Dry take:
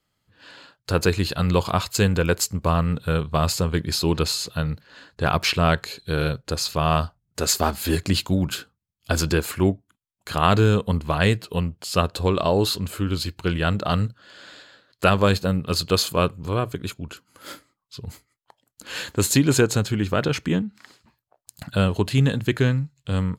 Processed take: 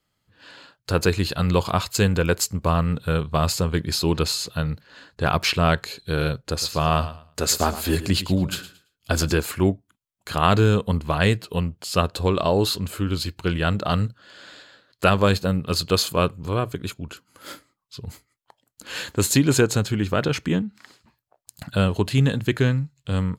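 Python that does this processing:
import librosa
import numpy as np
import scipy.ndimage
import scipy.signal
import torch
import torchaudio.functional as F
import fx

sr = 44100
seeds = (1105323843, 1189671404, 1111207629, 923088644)

y = fx.echo_feedback(x, sr, ms=111, feedback_pct=23, wet_db=-14, at=(6.46, 9.43))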